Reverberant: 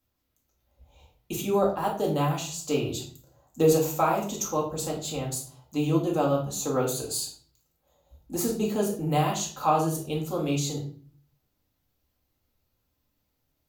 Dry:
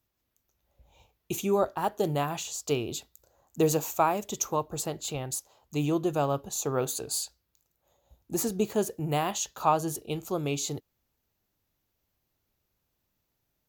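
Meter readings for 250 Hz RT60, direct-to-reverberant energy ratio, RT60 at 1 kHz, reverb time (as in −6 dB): 0.60 s, −2.5 dB, 0.40 s, 0.45 s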